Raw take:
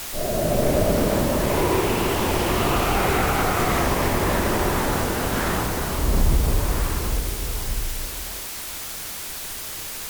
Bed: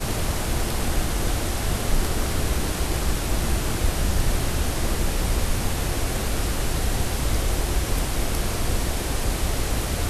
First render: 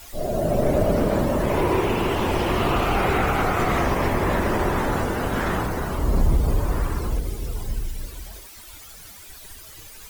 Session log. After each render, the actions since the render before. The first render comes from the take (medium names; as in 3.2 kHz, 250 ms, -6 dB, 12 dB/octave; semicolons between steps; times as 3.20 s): noise reduction 14 dB, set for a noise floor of -33 dBFS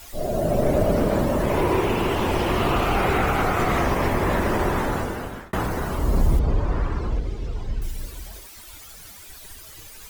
4.59–5.53 s: fade out equal-power; 6.39–7.82 s: distance through air 150 m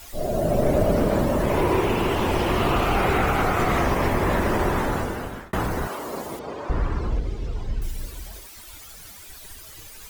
5.87–6.70 s: high-pass 390 Hz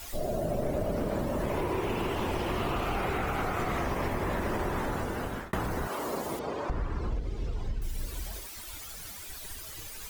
compression 4:1, threshold -29 dBFS, peak gain reduction 11.5 dB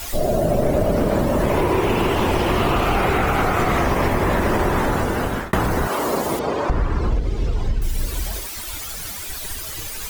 trim +12 dB